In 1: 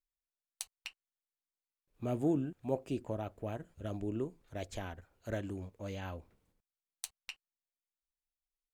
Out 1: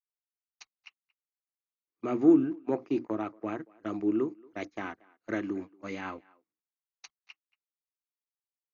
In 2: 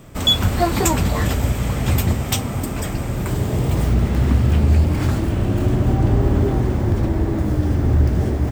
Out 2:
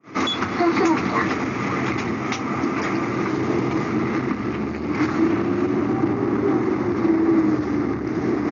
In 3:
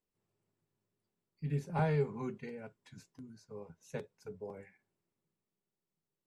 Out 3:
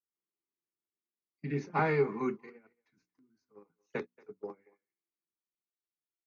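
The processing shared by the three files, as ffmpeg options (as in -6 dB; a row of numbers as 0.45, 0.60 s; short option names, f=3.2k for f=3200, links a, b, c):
-filter_complex "[0:a]bandreject=f=60:t=h:w=6,bandreject=f=120:t=h:w=6,bandreject=f=180:t=h:w=6,bandreject=f=240:t=h:w=6,bandreject=f=300:t=h:w=6,agate=range=-24dB:threshold=-42dB:ratio=16:detection=peak,adynamicequalizer=threshold=0.00708:dfrequency=4600:dqfactor=1.3:tfrequency=4600:tqfactor=1.3:attack=5:release=100:ratio=0.375:range=2:mode=cutabove:tftype=bell,alimiter=limit=-13.5dB:level=0:latency=1:release=294,asoftclip=type=tanh:threshold=-17.5dB,highpass=f=150:w=0.5412,highpass=f=150:w=1.3066,equalizer=f=160:t=q:w=4:g=-7,equalizer=f=320:t=q:w=4:g=9,equalizer=f=580:t=q:w=4:g=-7,equalizer=f=1.2k:t=q:w=4:g=9,equalizer=f=2.1k:t=q:w=4:g=8,equalizer=f=3.2k:t=q:w=4:g=-8,lowpass=f=6.3k:w=0.5412,lowpass=f=6.3k:w=1.3066,asplit=2[a][b];[b]adelay=230,highpass=300,lowpass=3.4k,asoftclip=type=hard:threshold=-21dB,volume=-24dB[c];[a][c]amix=inputs=2:normalize=0,volume=5.5dB" -ar 48000 -c:a ac3 -b:a 48k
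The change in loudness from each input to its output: +9.0, -3.0, +4.5 LU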